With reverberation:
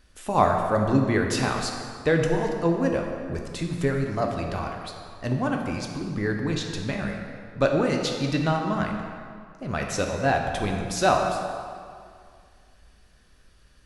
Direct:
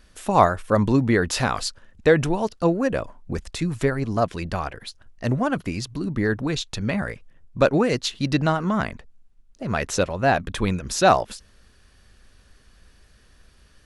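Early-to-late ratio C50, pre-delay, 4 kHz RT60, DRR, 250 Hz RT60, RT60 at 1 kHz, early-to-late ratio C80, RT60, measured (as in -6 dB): 3.5 dB, 3 ms, 1.6 s, 1.5 dB, 2.0 s, 2.2 s, 4.5 dB, 2.1 s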